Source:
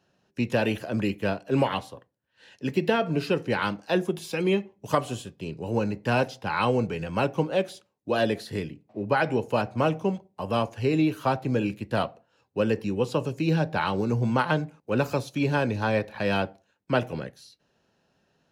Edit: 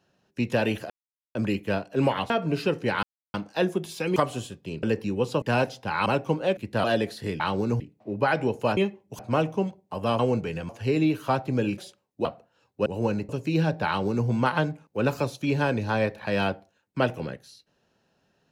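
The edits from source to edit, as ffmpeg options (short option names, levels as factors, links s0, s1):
-filter_complex "[0:a]asplit=20[s0][s1][s2][s3][s4][s5][s6][s7][s8][s9][s10][s11][s12][s13][s14][s15][s16][s17][s18][s19];[s0]atrim=end=0.9,asetpts=PTS-STARTPTS,afade=t=out:st=0.896:d=0.004:c=hsin,apad=pad_dur=0.45[s20];[s1]atrim=start=0.9:end=1.852,asetpts=PTS-STARTPTS,afade=t=in:d=0.004:c=hsin[s21];[s2]atrim=start=2.938:end=3.67,asetpts=PTS-STARTPTS,afade=t=out:st=0.728:d=0.004:c=hsin,apad=pad_dur=0.31[s22];[s3]atrim=start=3.67:end=4.492,asetpts=PTS-STARTPTS,afade=t=in:d=0.004:c=hsin[s23];[s4]atrim=start=4.908:end=5.582[s24];[s5]atrim=start=12.628:end=13.222[s25];[s6]atrim=start=6.008:end=6.652[s26];[s7]atrim=start=7.148:end=7.662[s27];[s8]atrim=start=11.748:end=12.022[s28];[s9]atrim=start=8.128:end=8.692[s29];[s10]atrim=start=13.798:end=14.202[s30];[s11]atrim=start=8.688:end=9.662[s31];[s12]atrim=start=4.488:end=4.912[s32];[s13]atrim=start=9.658:end=10.662[s33];[s14]atrim=start=6.648:end=7.152[s34];[s15]atrim=start=10.658:end=11.752[s35];[s16]atrim=start=7.658:end=8.132[s36];[s17]atrim=start=12.018:end=12.632[s37];[s18]atrim=start=5.578:end=6.012[s38];[s19]atrim=start=13.218[s39];[s20][s21]concat=n=2:v=0:a=1[s40];[s22][s23]concat=n=2:v=0:a=1[s41];[s40][s41]acrossfade=d=0.004:c1=hsin:c2=hsin[s42];[s42][s24]acrossfade=d=0.004:c1=hsin:c2=hsin[s43];[s43][s25]acrossfade=d=0.004:c1=hsin:c2=hsin[s44];[s44][s26]acrossfade=d=0.004:c1=hsin:c2=hsin[s45];[s45][s27]acrossfade=d=0.004:c1=hsin:c2=hsin[s46];[s46][s28]acrossfade=d=0.004:c1=hsin:c2=hsin[s47];[s47][s29]acrossfade=d=0.004:c1=hsin:c2=hsin[s48];[s48][s30]acrossfade=d=0.004:c1=hsin:c2=hsin[s49];[s49][s31]acrossfade=d=0.004:c1=hsin:c2=hsin[s50];[s50][s32]acrossfade=d=0.004:c1=hsin:c2=hsin[s51];[s51][s33]acrossfade=d=0.004:c1=hsin:c2=hsin[s52];[s52][s34]acrossfade=d=0.004:c1=hsin:c2=hsin[s53];[s53][s35]acrossfade=d=0.004:c1=hsin:c2=hsin[s54];[s54][s36]acrossfade=d=0.004:c1=hsin:c2=hsin[s55];[s55][s37]acrossfade=d=0.004:c1=hsin:c2=hsin[s56];[s56][s38]acrossfade=d=0.004:c1=hsin:c2=hsin[s57];[s57][s39]acrossfade=d=0.004:c1=hsin:c2=hsin"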